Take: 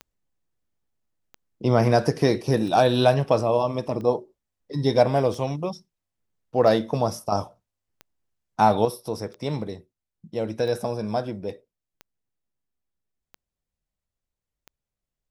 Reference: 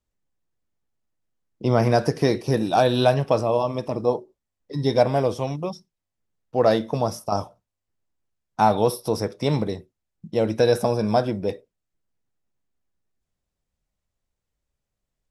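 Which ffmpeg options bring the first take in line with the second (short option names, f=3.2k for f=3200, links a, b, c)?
-af "adeclick=t=4,asetnsamples=n=441:p=0,asendcmd='8.85 volume volume 6dB',volume=0dB"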